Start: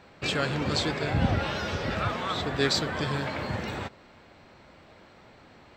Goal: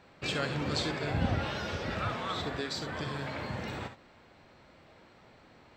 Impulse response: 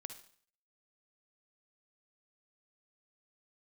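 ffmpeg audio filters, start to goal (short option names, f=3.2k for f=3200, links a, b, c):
-filter_complex "[0:a]asettb=1/sr,asplit=3[a][b][c];[a]atrim=end=2.544[d];[b]atrim=start=2.54:end=3.57,asetpts=PTS-STARTPTS,afade=t=in:d=0.004:c=qsin,afade=t=out:st=1.026:d=0.004:c=qsin,acompressor=threshold=-27dB:ratio=6[e];[c]atrim=start=3.566[f];[d][e]acrossfade=d=0.004:c1=hsin:c2=qsin[g];[g][f]acrossfade=d=0.004:c1=qsin:c2=hsin[h];[1:a]atrim=start_sample=2205,atrim=end_sample=3528[i];[h][i]afir=irnorm=-1:irlink=0"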